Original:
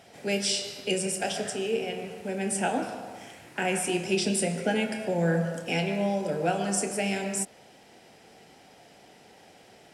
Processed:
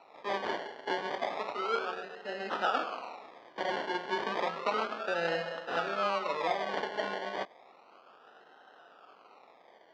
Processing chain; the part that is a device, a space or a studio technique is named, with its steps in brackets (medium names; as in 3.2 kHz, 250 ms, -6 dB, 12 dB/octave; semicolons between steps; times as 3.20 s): circuit-bent sampling toy (decimation with a swept rate 27×, swing 60% 0.32 Hz; cabinet simulation 540–4100 Hz, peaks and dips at 1.3 kHz +7 dB, 2.2 kHz -4 dB, 3.6 kHz -3 dB); trim -1 dB